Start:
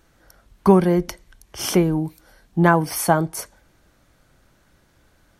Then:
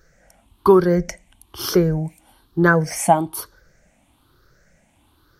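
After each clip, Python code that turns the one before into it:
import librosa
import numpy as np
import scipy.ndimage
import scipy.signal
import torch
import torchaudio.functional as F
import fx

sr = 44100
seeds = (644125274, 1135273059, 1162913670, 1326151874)

y = fx.spec_ripple(x, sr, per_octave=0.57, drift_hz=1.1, depth_db=15)
y = y * librosa.db_to_amplitude(-2.0)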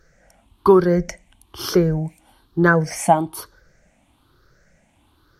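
y = fx.high_shelf(x, sr, hz=11000.0, db=-9.0)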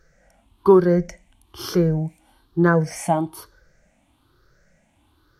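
y = fx.hpss(x, sr, part='percussive', gain_db=-8)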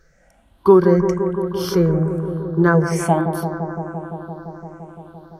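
y = fx.echo_bbd(x, sr, ms=171, stages=2048, feedback_pct=83, wet_db=-9.0)
y = y * librosa.db_to_amplitude(2.0)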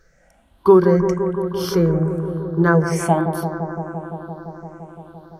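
y = fx.hum_notches(x, sr, base_hz=50, count=7)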